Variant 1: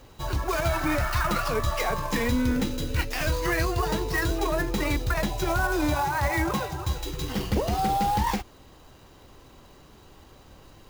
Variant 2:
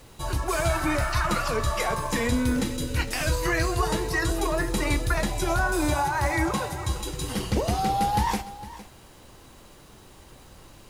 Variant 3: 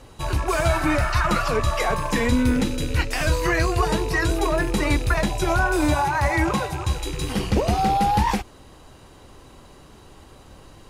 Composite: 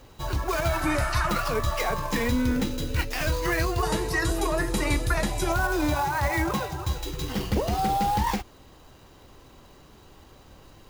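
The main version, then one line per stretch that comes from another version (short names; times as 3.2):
1
0.82–1.29 from 2
3.83–5.52 from 2
not used: 3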